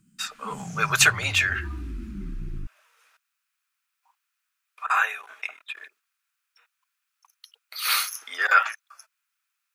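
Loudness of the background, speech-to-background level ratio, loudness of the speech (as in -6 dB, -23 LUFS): -37.0 LUFS, 13.5 dB, -23.5 LUFS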